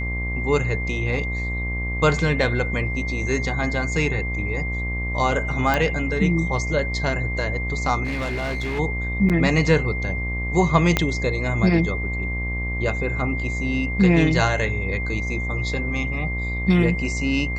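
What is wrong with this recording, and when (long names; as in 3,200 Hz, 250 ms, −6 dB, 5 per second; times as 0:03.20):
mains buzz 60 Hz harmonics 20 −27 dBFS
whistle 2,100 Hz −28 dBFS
0:05.74: click −8 dBFS
0:08.04–0:08.80: clipping −22.5 dBFS
0:09.29–0:09.30: drop-out 7.6 ms
0:10.97: click −4 dBFS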